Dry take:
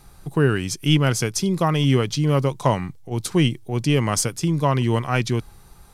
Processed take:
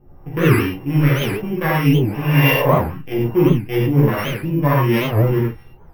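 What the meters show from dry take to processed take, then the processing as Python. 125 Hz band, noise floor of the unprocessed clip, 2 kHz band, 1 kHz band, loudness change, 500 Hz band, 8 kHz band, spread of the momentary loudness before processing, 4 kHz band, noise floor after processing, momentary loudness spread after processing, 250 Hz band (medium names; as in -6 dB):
+4.5 dB, -47 dBFS, +6.5 dB, +3.0 dB, +4.0 dB, +4.5 dB, under -10 dB, 7 LU, -1.0 dB, -43 dBFS, 7 LU, +4.5 dB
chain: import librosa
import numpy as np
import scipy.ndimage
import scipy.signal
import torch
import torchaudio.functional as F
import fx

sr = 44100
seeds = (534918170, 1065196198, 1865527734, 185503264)

p1 = np.r_[np.sort(x[:len(x) // 16 * 16].reshape(-1, 16), axis=1).ravel(), x[len(x) // 16 * 16:]]
p2 = fx.high_shelf(p1, sr, hz=3700.0, db=7.0)
p3 = fx.notch(p2, sr, hz=670.0, q=16.0)
p4 = fx.rider(p3, sr, range_db=3, speed_s=0.5)
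p5 = fx.spec_repair(p4, sr, seeds[0], start_s=1.89, length_s=0.73, low_hz=400.0, high_hz=9400.0, source='both')
p6 = fx.filter_lfo_lowpass(p5, sr, shape='saw_up', hz=1.6, low_hz=510.0, high_hz=2900.0, q=1.4)
p7 = p6 + fx.room_early_taps(p6, sr, ms=(14, 48), db=(-3.5, -7.5), dry=0)
p8 = fx.rev_gated(p7, sr, seeds[1], gate_ms=130, shape='flat', drr_db=-3.5)
p9 = np.repeat(scipy.signal.resample_poly(p8, 1, 3), 3)[:len(p8)]
p10 = fx.record_warp(p9, sr, rpm=78.0, depth_cents=250.0)
y = p10 * librosa.db_to_amplitude(-4.0)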